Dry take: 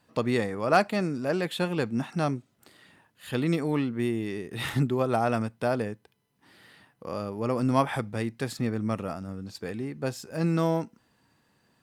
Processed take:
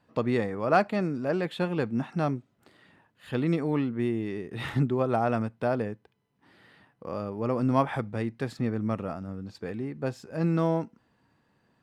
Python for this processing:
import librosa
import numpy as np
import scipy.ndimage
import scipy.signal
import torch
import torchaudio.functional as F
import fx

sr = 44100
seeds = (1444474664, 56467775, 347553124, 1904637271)

y = fx.lowpass(x, sr, hz=2100.0, slope=6)